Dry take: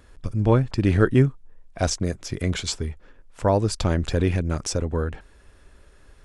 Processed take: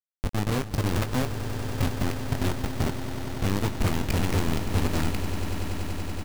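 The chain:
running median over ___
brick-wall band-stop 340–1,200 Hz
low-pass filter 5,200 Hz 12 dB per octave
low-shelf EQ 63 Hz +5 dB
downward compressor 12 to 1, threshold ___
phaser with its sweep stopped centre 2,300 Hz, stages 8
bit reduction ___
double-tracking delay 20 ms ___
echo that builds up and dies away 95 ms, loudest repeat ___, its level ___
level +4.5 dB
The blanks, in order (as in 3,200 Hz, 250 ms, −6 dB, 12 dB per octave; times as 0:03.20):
25 samples, −28 dBFS, 5 bits, −10 dB, 8, −14 dB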